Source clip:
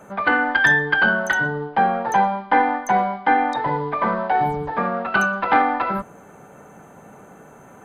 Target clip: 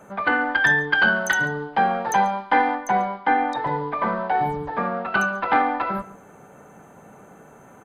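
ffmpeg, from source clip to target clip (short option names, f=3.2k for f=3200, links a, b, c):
-filter_complex "[0:a]asettb=1/sr,asplit=3[a][b][c];[a]atrim=end=0.934[d];[b]atrim=start=0.93:end=2.75,asetpts=PTS-STARTPTS,afade=t=in:d=0.004:c=qsin,afade=t=out:st=1.816:d=0.004:c=qsin,highshelf=f=3.3k:g=10[e];[c]atrim=start=2.746[f];[d][e]acrossfade=d=0.004:c1=hsin:c2=qsin[g];[g][f]acrossfade=d=0.004:c1=qsin:c2=hsin,asplit=2[h][i];[i]adelay=139.9,volume=-18dB,highshelf=f=4k:g=-3.15[j];[h][j]amix=inputs=2:normalize=0,volume=-2.5dB"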